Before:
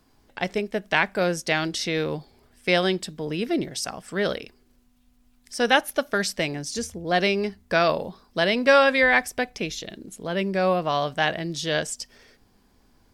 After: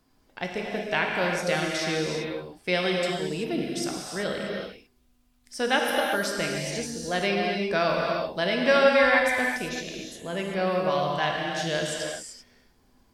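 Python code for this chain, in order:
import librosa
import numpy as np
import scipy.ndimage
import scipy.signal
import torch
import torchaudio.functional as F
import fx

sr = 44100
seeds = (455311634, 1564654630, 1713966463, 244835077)

y = fx.rev_gated(x, sr, seeds[0], gate_ms=410, shape='flat', drr_db=-1.0)
y = y * 10.0 ** (-5.5 / 20.0)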